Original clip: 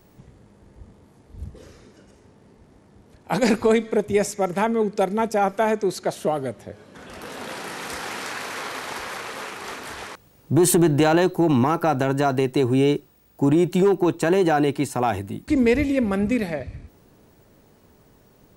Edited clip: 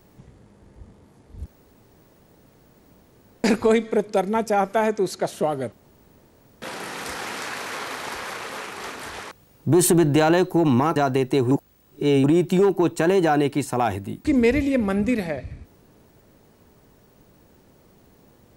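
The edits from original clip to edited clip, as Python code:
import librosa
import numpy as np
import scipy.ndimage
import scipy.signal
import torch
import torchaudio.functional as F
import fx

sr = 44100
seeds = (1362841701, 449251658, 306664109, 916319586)

y = fx.edit(x, sr, fx.room_tone_fill(start_s=1.46, length_s=1.98),
    fx.cut(start_s=4.08, length_s=0.84),
    fx.room_tone_fill(start_s=6.56, length_s=0.9),
    fx.cut(start_s=11.8, length_s=0.39),
    fx.reverse_span(start_s=12.74, length_s=0.73), tone=tone)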